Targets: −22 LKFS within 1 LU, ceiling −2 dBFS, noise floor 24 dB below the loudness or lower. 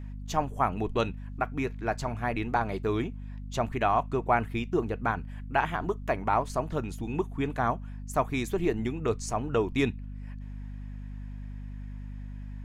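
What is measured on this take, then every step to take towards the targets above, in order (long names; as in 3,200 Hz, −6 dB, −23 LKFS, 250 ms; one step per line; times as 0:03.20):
mains hum 50 Hz; hum harmonics up to 250 Hz; level of the hum −36 dBFS; integrated loudness −30.0 LKFS; sample peak −10.5 dBFS; target loudness −22.0 LKFS
→ hum removal 50 Hz, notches 5
level +8 dB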